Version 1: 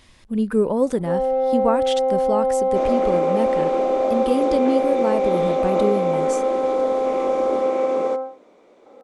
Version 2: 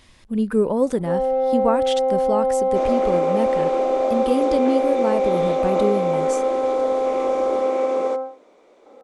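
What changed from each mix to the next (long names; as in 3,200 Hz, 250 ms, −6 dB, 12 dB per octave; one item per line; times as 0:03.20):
second sound: add bass and treble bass −8 dB, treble +2 dB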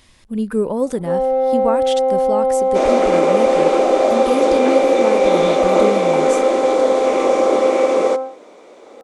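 first sound +3.5 dB
second sound +10.5 dB
master: add high-shelf EQ 6,100 Hz +5.5 dB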